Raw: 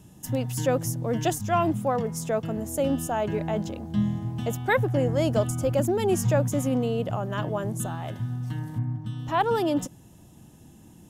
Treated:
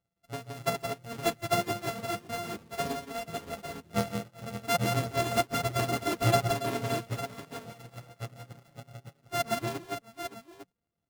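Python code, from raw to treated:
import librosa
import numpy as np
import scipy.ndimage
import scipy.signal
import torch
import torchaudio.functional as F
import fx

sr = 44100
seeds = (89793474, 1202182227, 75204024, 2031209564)

y = np.r_[np.sort(x[:len(x) // 64 * 64].reshape(-1, 64), axis=1).ravel(), x[len(x) // 64 * 64:]]
y = fx.dereverb_blind(y, sr, rt60_s=1.4)
y = fx.wow_flutter(y, sr, seeds[0], rate_hz=2.1, depth_cents=20.0)
y = fx.echo_multitap(y, sr, ms=(114, 130, 170, 214, 565, 852), db=(-18.5, -16.5, -3.0, -18.5, -5.5, -3.5))
y = fx.upward_expand(y, sr, threshold_db=-40.0, expansion=2.5)
y = y * 10.0 ** (-1.5 / 20.0)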